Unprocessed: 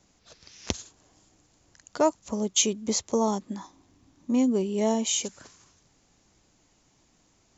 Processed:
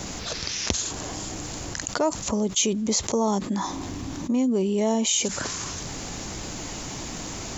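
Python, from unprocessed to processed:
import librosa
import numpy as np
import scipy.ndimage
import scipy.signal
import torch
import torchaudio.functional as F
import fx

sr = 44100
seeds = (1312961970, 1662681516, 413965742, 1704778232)

y = fx.env_flatten(x, sr, amount_pct=70)
y = y * 10.0 ** (-2.0 / 20.0)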